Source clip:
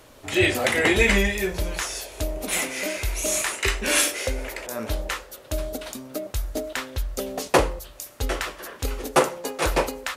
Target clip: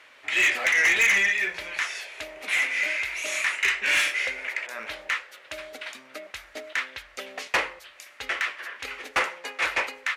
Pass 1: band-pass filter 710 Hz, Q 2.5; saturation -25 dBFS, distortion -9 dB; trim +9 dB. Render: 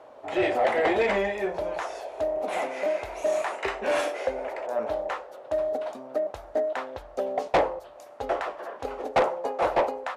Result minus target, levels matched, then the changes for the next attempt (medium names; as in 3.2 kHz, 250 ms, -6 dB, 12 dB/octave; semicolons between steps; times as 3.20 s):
1 kHz band +10.5 dB
change: band-pass filter 2.1 kHz, Q 2.5